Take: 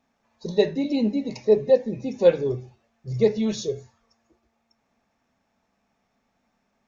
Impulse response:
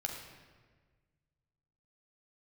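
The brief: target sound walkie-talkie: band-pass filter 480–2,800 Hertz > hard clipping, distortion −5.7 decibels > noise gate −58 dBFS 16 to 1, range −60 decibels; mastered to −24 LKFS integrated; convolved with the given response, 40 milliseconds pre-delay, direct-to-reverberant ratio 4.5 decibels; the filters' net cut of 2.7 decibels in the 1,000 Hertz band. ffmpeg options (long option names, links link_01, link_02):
-filter_complex "[0:a]equalizer=frequency=1000:width_type=o:gain=-3,asplit=2[link_01][link_02];[1:a]atrim=start_sample=2205,adelay=40[link_03];[link_02][link_03]afir=irnorm=-1:irlink=0,volume=-5.5dB[link_04];[link_01][link_04]amix=inputs=2:normalize=0,highpass=480,lowpass=2800,asoftclip=type=hard:threshold=-23dB,agate=range=-60dB:threshold=-58dB:ratio=16,volume=6.5dB"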